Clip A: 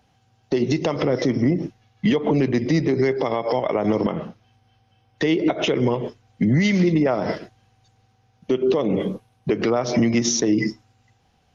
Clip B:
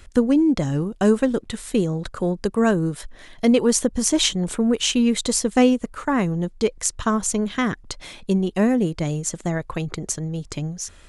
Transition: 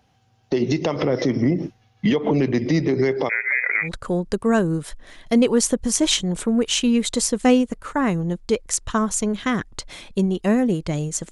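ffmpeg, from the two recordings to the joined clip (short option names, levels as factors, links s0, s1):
-filter_complex "[0:a]asettb=1/sr,asplit=3[s0][s1][s2];[s0]atrim=end=3.294[s3];[s1]atrim=start=3.29:end=3.89,asetpts=PTS-STARTPTS,afade=t=in:d=0.004:c=qsin,afade=t=out:st=0.596:d=0.004:c=qsin,lowpass=f=2200:t=q:w=0.5098,lowpass=f=2200:t=q:w=0.6013,lowpass=f=2200:t=q:w=0.9,lowpass=f=2200:t=q:w=2.563,afreqshift=-2600[s4];[s2]atrim=start=3.886[s5];[s3][s4]acrossfade=d=0.004:c1=hsin:c2=qsin[s6];[s6][s5]acrossfade=d=0.004:c1=qsin:c2=hsin,apad=whole_dur=11.31,atrim=end=11.31,atrim=end=3.89,asetpts=PTS-STARTPTS[s7];[1:a]atrim=start=1.93:end=9.43,asetpts=PTS-STARTPTS[s8];[s7][s8]acrossfade=d=0.08:c1=tri:c2=tri"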